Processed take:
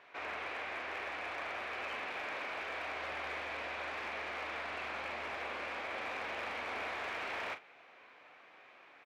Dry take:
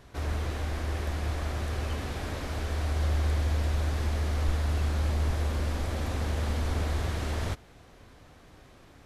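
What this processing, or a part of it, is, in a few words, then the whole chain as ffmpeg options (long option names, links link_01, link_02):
megaphone: -filter_complex "[0:a]highpass=690,lowpass=2500,equalizer=frequency=2400:width_type=o:width=0.44:gain=9.5,asoftclip=type=hard:threshold=-34dB,asplit=2[link_01][link_02];[link_02]adelay=40,volume=-10dB[link_03];[link_01][link_03]amix=inputs=2:normalize=0"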